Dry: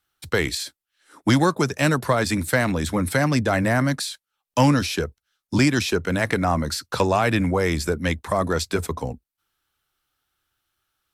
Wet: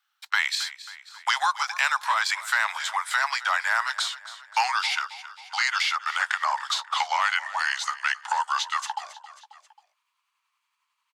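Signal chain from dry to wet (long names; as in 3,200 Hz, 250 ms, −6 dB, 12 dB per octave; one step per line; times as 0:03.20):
pitch glide at a constant tempo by −4.5 semitones starting unshifted
noise gate −36 dBFS, range −15 dB
Butterworth high-pass 850 Hz 48 dB per octave
parametric band 11,000 Hz −13 dB 0.88 octaves
in parallel at −1 dB: brickwall limiter −21 dBFS, peak gain reduction 10 dB
on the sum: repeating echo 269 ms, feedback 38%, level −18 dB
multiband upward and downward compressor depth 40%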